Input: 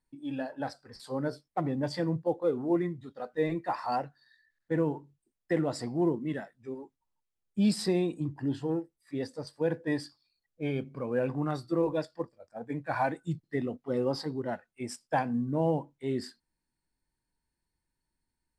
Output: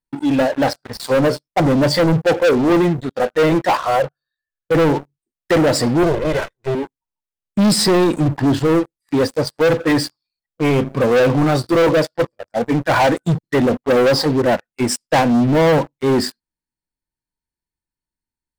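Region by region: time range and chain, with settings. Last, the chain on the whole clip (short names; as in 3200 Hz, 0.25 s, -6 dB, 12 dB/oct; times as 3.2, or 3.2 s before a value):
3.77–4.75 high shelf 2500 Hz -11 dB + fixed phaser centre 1300 Hz, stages 8
6.03–6.75 minimum comb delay 2 ms + compressor 2:1, threshold -36 dBFS
whole clip: dynamic EQ 540 Hz, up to +7 dB, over -46 dBFS, Q 4.3; sample leveller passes 5; gain +3 dB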